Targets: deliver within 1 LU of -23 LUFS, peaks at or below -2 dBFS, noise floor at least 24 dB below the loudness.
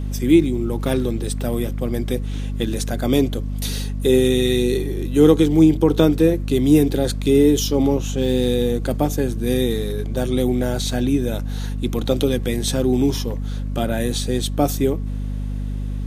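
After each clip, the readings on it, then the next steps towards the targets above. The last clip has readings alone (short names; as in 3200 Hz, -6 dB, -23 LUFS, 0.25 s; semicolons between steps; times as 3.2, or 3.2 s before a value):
hum 50 Hz; harmonics up to 250 Hz; hum level -22 dBFS; loudness -20.0 LUFS; peak -1.5 dBFS; loudness target -23.0 LUFS
-> notches 50/100/150/200/250 Hz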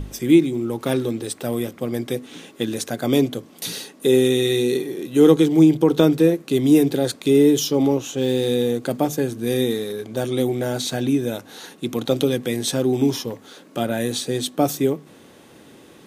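hum none; loudness -20.5 LUFS; peak -2.0 dBFS; loudness target -23.0 LUFS
-> gain -2.5 dB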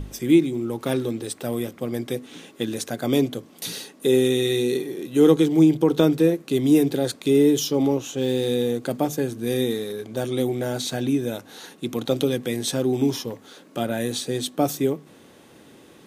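loudness -23.0 LUFS; peak -4.5 dBFS; noise floor -50 dBFS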